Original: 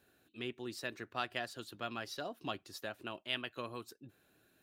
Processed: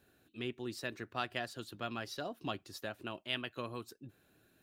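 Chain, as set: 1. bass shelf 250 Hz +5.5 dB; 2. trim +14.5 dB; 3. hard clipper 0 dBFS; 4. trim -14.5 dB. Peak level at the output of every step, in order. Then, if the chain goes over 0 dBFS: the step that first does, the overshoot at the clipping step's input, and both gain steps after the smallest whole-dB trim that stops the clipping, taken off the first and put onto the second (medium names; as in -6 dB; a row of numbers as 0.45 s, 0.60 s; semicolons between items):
-20.0 dBFS, -5.5 dBFS, -5.5 dBFS, -20.0 dBFS; nothing clips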